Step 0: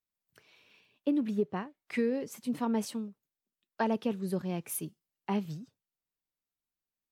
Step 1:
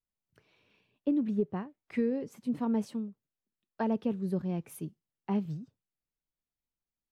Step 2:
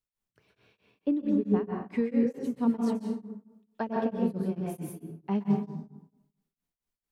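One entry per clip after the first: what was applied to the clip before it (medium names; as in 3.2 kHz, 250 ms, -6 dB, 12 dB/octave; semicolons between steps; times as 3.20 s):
tilt EQ -2.5 dB/octave; trim -4 dB
plate-style reverb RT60 0.93 s, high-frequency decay 0.5×, pre-delay 115 ms, DRR -1 dB; tremolo of two beating tones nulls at 4.5 Hz; trim +2 dB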